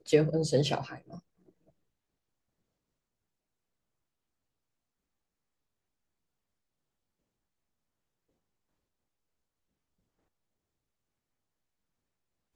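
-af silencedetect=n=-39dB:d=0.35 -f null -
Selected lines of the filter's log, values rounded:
silence_start: 1.18
silence_end: 12.55 | silence_duration: 11.37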